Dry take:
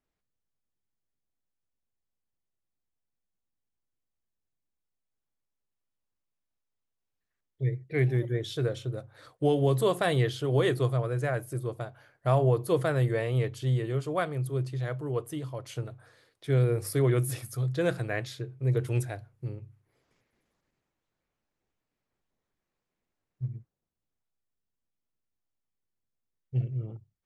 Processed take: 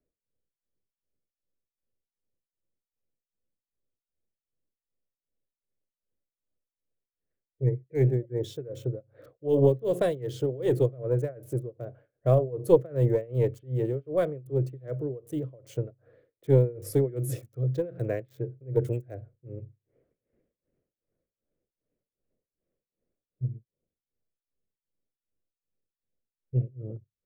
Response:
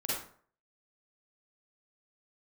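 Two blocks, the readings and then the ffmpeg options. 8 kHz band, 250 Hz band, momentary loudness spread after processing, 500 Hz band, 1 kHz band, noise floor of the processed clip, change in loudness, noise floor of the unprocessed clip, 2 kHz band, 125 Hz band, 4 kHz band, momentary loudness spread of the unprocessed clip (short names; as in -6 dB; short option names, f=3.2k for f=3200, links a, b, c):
-5.0 dB, +1.0 dB, 17 LU, +3.0 dB, -6.0 dB, under -85 dBFS, +1.0 dB, -85 dBFS, -11.5 dB, -0.5 dB, n/a, 14 LU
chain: -filter_complex "[0:a]lowshelf=f=690:t=q:w=3:g=8.5,tremolo=f=2.6:d=0.93,acrossover=split=320|650|2600[a][b][c][d];[d]aeval=exprs='val(0)*gte(abs(val(0)),0.00251)':c=same[e];[a][b][c][e]amix=inputs=4:normalize=0,aexciter=amount=2.1:drive=2.4:freq=6.1k,aeval=exprs='0.75*(cos(1*acos(clip(val(0)/0.75,-1,1)))-cos(1*PI/2))+0.106*(cos(2*acos(clip(val(0)/0.75,-1,1)))-cos(2*PI/2))':c=same,volume=-5.5dB"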